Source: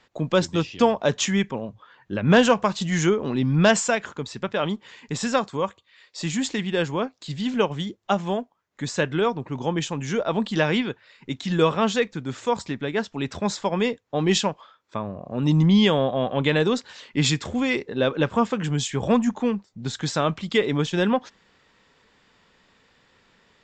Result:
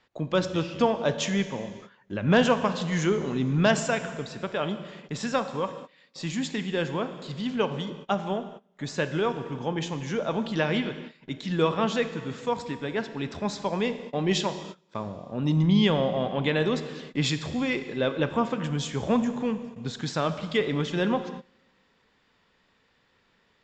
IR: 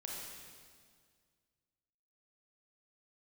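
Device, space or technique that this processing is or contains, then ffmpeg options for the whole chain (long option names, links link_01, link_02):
keyed gated reverb: -filter_complex "[0:a]asplit=3[link_01][link_02][link_03];[1:a]atrim=start_sample=2205[link_04];[link_02][link_04]afir=irnorm=-1:irlink=0[link_05];[link_03]apad=whole_len=1042365[link_06];[link_05][link_06]sidechaingate=range=-22dB:threshold=-47dB:ratio=16:detection=peak,volume=-5dB[link_07];[link_01][link_07]amix=inputs=2:normalize=0,lowpass=6300,volume=-6.5dB"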